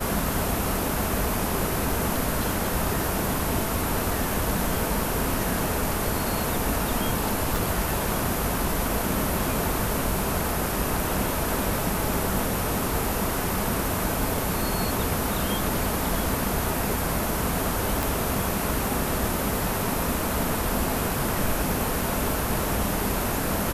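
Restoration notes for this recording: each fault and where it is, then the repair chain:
7.56 s: pop
18.03 s: pop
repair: de-click

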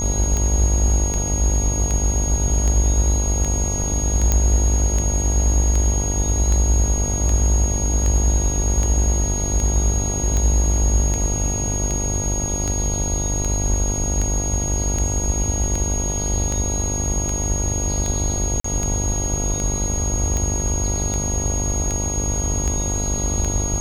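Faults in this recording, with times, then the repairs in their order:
buzz 50 Hz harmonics 19 -25 dBFS
tick 78 rpm -11 dBFS
whine 6.6 kHz -24 dBFS
4.32 s: pop -4 dBFS
18.60–18.64 s: dropout 44 ms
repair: de-click; de-hum 50 Hz, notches 19; band-stop 6.6 kHz, Q 30; interpolate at 18.60 s, 44 ms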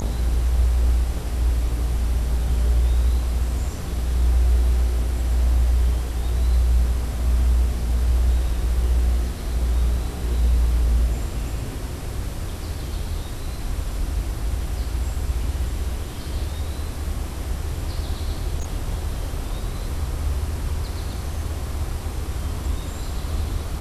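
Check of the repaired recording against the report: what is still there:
nothing left

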